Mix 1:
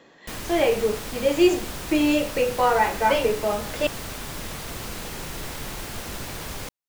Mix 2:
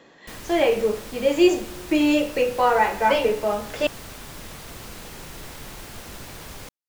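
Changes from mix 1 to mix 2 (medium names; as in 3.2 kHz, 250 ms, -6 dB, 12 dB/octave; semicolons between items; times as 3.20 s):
background -5.0 dB; reverb: on, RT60 1.4 s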